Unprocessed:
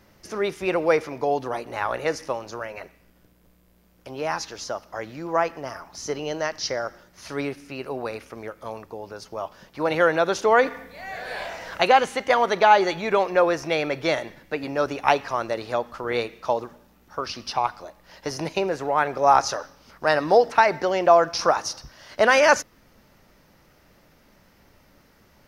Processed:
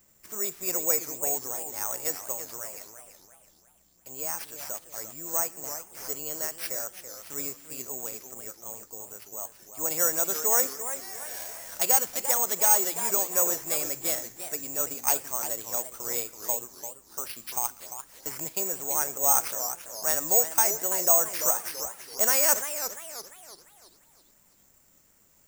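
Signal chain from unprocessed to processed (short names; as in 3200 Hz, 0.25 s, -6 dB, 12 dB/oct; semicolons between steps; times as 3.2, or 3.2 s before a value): careless resampling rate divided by 6×, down none, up zero stuff; warbling echo 0.339 s, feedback 42%, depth 206 cents, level -9.5 dB; gain -13.5 dB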